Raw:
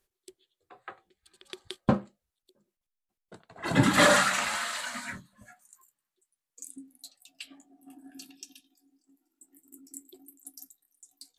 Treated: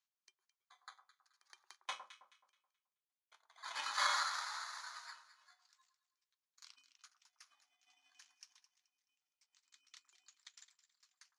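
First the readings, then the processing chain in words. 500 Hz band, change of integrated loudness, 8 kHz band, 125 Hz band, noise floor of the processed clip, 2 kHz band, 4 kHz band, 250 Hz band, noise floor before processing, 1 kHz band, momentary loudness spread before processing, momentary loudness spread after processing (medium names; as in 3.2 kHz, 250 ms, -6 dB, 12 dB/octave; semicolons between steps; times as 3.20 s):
-29.5 dB, -14.5 dB, -14.0 dB, under -40 dB, under -85 dBFS, -14.5 dB, -10.0 dB, under -40 dB, under -85 dBFS, -11.5 dB, 25 LU, 25 LU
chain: bit-reversed sample order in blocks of 16 samples; Chebyshev band-pass 990–6700 Hz, order 3; echo whose repeats swap between lows and highs 107 ms, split 1.3 kHz, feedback 54%, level -8.5 dB; trim -8 dB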